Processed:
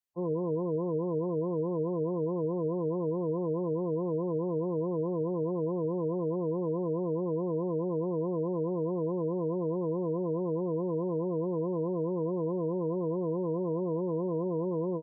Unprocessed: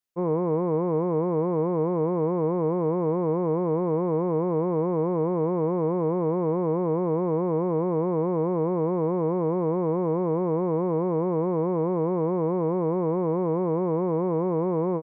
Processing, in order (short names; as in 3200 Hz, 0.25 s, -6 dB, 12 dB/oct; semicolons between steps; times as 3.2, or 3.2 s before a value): spectral gate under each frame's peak -15 dB strong; gain -6 dB